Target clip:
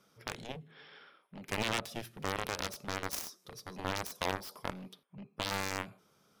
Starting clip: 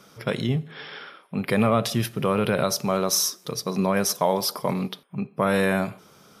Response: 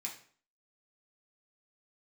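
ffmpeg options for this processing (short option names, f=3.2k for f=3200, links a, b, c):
-af "aeval=exprs='0.422*(cos(1*acos(clip(val(0)/0.422,-1,1)))-cos(1*PI/2))+0.15*(cos(3*acos(clip(val(0)/0.422,-1,1)))-cos(3*PI/2))+0.0075*(cos(7*acos(clip(val(0)/0.422,-1,1)))-cos(7*PI/2))':c=same,aeval=exprs='0.15*(abs(mod(val(0)/0.15+3,4)-2)-1)':c=same,volume=-1.5dB"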